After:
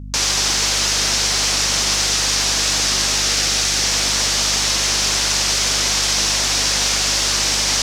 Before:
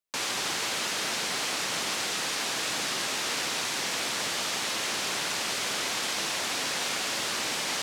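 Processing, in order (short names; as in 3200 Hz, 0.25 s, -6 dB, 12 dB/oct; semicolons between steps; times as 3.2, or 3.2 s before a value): bell 5700 Hz +10.5 dB 0.99 oct; hum 50 Hz, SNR 13 dB; 3.21–3.84 notch 1000 Hz, Q 6.3; gain +7 dB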